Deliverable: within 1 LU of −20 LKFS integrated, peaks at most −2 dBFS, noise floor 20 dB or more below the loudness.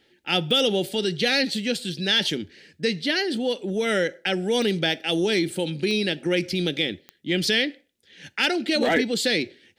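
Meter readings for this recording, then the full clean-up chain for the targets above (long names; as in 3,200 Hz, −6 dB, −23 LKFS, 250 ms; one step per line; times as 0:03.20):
number of clicks 4; integrated loudness −23.5 LKFS; sample peak −7.0 dBFS; target loudness −20.0 LKFS
→ click removal
level +3.5 dB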